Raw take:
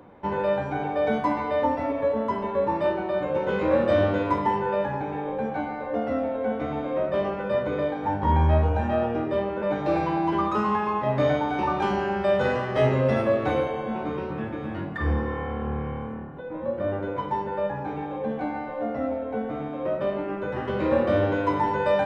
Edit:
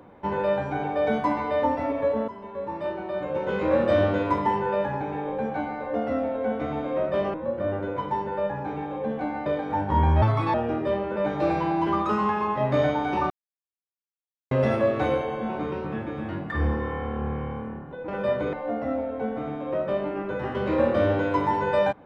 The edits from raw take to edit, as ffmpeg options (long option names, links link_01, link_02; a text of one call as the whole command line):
ffmpeg -i in.wav -filter_complex "[0:a]asplit=10[link_01][link_02][link_03][link_04][link_05][link_06][link_07][link_08][link_09][link_10];[link_01]atrim=end=2.28,asetpts=PTS-STARTPTS,afade=type=out:start_time=2.276:duration=0.004:curve=hsin:silence=0.199526[link_11];[link_02]atrim=start=2.28:end=7.342,asetpts=PTS-STARTPTS,afade=type=in:duration=1.55:silence=0.199526[link_12];[link_03]atrim=start=16.538:end=18.662[link_13];[link_04]atrim=start=7.788:end=8.554[link_14];[link_05]atrim=start=8.55:end=9,asetpts=PTS-STARTPTS,asetrate=61740,aresample=44100[link_15];[link_06]atrim=start=8.996:end=11.76,asetpts=PTS-STARTPTS,afade=type=out:start_time=2.76:duration=0.004:curve=hsin[link_16];[link_07]atrim=start=11.76:end=12.97,asetpts=PTS-STARTPTS,volume=0[link_17];[link_08]atrim=start=12.97:end=16.542,asetpts=PTS-STARTPTS,afade=type=in:duration=0.004:curve=hsin[link_18];[link_09]atrim=start=7.338:end=7.792[link_19];[link_10]atrim=start=18.658[link_20];[link_11][link_12]concat=n=2:v=0:a=1[link_21];[link_21][link_13]acrossfade=duration=0.004:curve1=hsin:curve2=hsin[link_22];[link_22][link_14]acrossfade=duration=0.004:curve1=hsin:curve2=hsin[link_23];[link_23][link_15]acrossfade=duration=0.004:curve1=hsin:curve2=hsin[link_24];[link_16][link_17][link_18]concat=n=3:v=0:a=1[link_25];[link_24][link_25]acrossfade=duration=0.004:curve1=hsin:curve2=hsin[link_26];[link_26][link_19]acrossfade=duration=0.004:curve1=hsin:curve2=hsin[link_27];[link_27][link_20]acrossfade=duration=0.004:curve1=hsin:curve2=hsin" out.wav